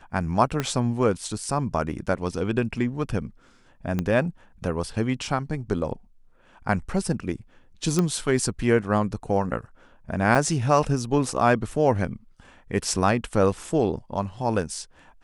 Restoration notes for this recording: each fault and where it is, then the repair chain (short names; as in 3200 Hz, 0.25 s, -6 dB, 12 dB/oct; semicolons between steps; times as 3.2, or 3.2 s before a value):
0.6 pop -11 dBFS
3.99 pop -13 dBFS
7.99 pop -10 dBFS
10.35 gap 4.9 ms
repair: de-click; interpolate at 10.35, 4.9 ms